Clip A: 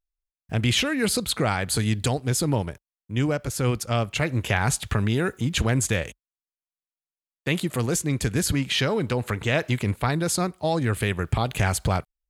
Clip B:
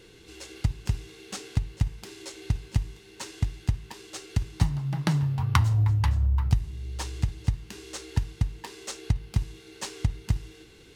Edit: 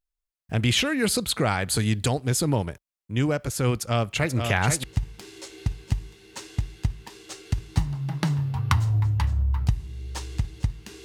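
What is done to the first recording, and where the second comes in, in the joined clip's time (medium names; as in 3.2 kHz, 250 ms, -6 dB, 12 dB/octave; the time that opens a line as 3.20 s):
clip A
3.75–4.84 s: delay 485 ms -6 dB
4.84 s: go over to clip B from 1.68 s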